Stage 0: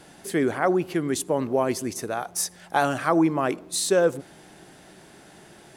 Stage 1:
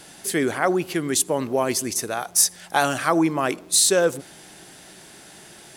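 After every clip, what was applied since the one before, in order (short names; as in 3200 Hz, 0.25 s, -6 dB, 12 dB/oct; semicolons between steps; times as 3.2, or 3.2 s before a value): high shelf 2200 Hz +10.5 dB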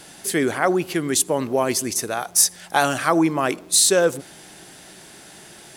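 bit-crush 12-bit; gain +1.5 dB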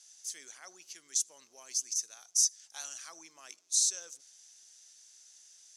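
band-pass 6100 Hz, Q 5.5; gain -2.5 dB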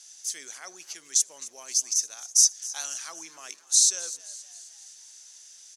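frequency-shifting echo 0.262 s, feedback 54%, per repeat +95 Hz, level -17.5 dB; gain +8 dB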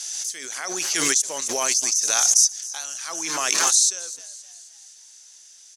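backwards sustainer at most 23 dB/s; gain +1 dB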